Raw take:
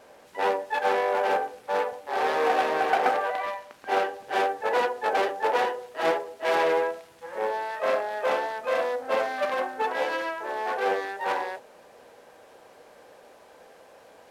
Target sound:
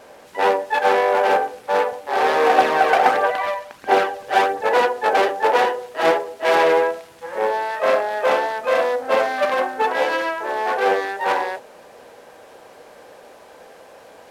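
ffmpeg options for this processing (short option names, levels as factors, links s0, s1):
-filter_complex "[0:a]asettb=1/sr,asplit=3[s0][s1][s2];[s0]atrim=end=2.584[s3];[s1]atrim=start=2.58:end=4.66,asetpts=PTS-STARTPTS,afade=t=in:d=0.004:c=qsin,afade=t=out:st=2.076:d=0.004:c=qsin,aphaser=in_gain=1:out_gain=1:delay=2:decay=0.39:speed=1.5:type=triangular[s4];[s2]atrim=start=4.656[s5];[s3][s4]acrossfade=d=0.004:c1=hsin:c2=qsin[s6];[s6][s5]acrossfade=d=0.004:c1=qsin:c2=hsin,volume=2.37"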